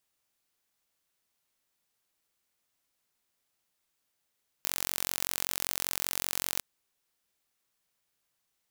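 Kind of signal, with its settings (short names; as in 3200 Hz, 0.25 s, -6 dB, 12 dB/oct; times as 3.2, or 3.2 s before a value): pulse train 45.2/s, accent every 0, -4 dBFS 1.96 s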